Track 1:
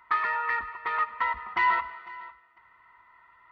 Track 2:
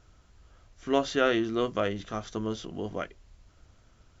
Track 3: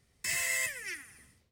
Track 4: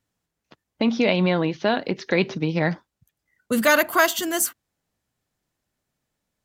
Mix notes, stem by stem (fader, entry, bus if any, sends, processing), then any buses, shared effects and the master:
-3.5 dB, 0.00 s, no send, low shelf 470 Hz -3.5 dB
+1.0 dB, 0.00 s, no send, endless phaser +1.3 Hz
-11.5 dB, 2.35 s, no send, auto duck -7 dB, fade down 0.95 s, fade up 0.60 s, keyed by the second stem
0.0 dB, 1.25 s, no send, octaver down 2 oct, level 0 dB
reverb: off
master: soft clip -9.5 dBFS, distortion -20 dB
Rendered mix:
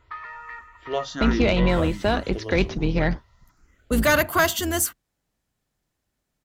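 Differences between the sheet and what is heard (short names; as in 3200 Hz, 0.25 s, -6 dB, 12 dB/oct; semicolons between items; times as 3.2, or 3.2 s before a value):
stem 1 -3.5 dB -> -10.0 dB; stem 3: entry 2.35 s -> 1.45 s; stem 4: entry 1.25 s -> 0.40 s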